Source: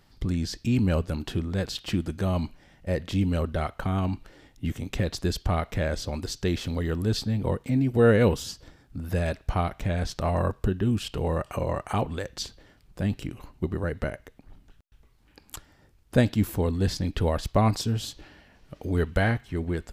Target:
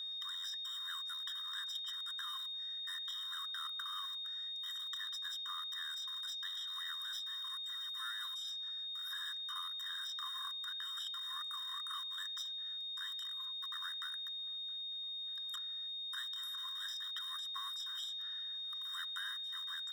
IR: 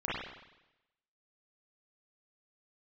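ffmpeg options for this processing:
-filter_complex "[0:a]acrossover=split=88|620|5000[s0][s1][s2][s3];[s0]acompressor=threshold=0.00631:ratio=4[s4];[s1]acompressor=threshold=0.0126:ratio=4[s5];[s2]acompressor=threshold=0.00562:ratio=4[s6];[s3]acompressor=threshold=0.00178:ratio=4[s7];[s4][s5][s6][s7]amix=inputs=4:normalize=0,asplit=2[s8][s9];[s9]acrusher=bits=5:mix=0:aa=0.000001,volume=0.335[s10];[s8][s10]amix=inputs=2:normalize=0,aeval=exprs='val(0)+0.0126*sin(2*PI*3700*n/s)':c=same,afftfilt=real='re*eq(mod(floor(b*sr/1024/1000),2),1)':imag='im*eq(mod(floor(b*sr/1024/1000),2),1)':win_size=1024:overlap=0.75,volume=0.75"

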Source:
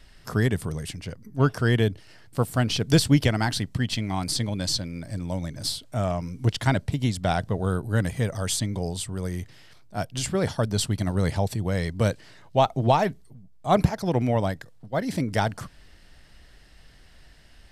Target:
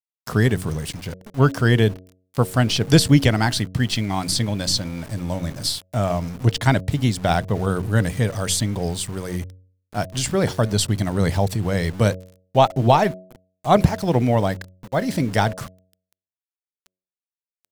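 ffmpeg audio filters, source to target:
-af "aeval=exprs='val(0)*gte(abs(val(0)),0.01)':c=same,bandreject=f=92.39:t=h:w=4,bandreject=f=184.78:t=h:w=4,bandreject=f=277.17:t=h:w=4,bandreject=f=369.56:t=h:w=4,bandreject=f=461.95:t=h:w=4,bandreject=f=554.34:t=h:w=4,bandreject=f=646.73:t=h:w=4,volume=1.78"

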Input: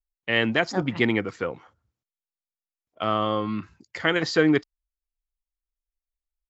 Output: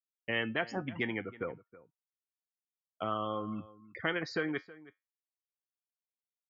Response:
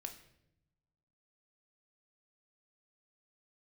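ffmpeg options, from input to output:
-filter_complex "[0:a]afftfilt=real='re*gte(hypot(re,im),0.0282)':imag='im*gte(hypot(re,im),0.0282)':win_size=1024:overlap=0.75,agate=range=0.0224:threshold=0.00708:ratio=3:detection=peak,equalizer=f=4400:w=1.2:g=-5.5,acrossover=split=750[s0][s1];[s0]acompressor=threshold=0.0316:ratio=6[s2];[s1]flanger=delay=9.4:depth=1.6:regen=73:speed=1.2:shape=sinusoidal[s3];[s2][s3]amix=inputs=2:normalize=0,asplit=2[s4][s5];[s5]adelay=320.7,volume=0.112,highshelf=f=4000:g=-7.22[s6];[s4][s6]amix=inputs=2:normalize=0,volume=0.596"

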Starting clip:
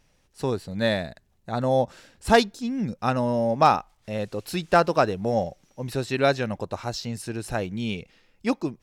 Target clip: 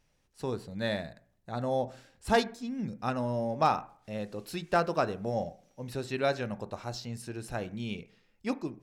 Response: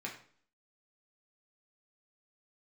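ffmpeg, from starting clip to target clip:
-filter_complex "[0:a]asplit=2[s0][s1];[s1]lowpass=1800[s2];[1:a]atrim=start_sample=2205,adelay=20[s3];[s2][s3]afir=irnorm=-1:irlink=0,volume=0.282[s4];[s0][s4]amix=inputs=2:normalize=0,volume=0.398"

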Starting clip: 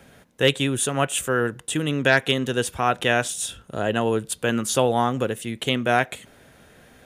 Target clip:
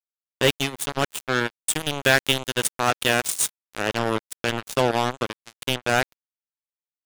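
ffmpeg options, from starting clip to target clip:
-filter_complex "[0:a]asettb=1/sr,asplit=3[s0][s1][s2];[s0]atrim=end=1.664[s3];[s1]atrim=start=1.66:end=3.89,asetpts=PTS-STARTPTS,afade=t=in:d=0.004:c=qsin,afade=t=out:st=2.226:d=0.004:c=qsin,highshelf=f=4700:g=10[s4];[s2]atrim=start=3.886[s5];[s3][s4]acrossfade=d=0.004:c1=hsin:c2=qsin[s6];[s6][s5]acrossfade=d=0.004:c1=qsin:c2=hsin,acrusher=bits=2:mix=0:aa=0.5,volume=0.891"

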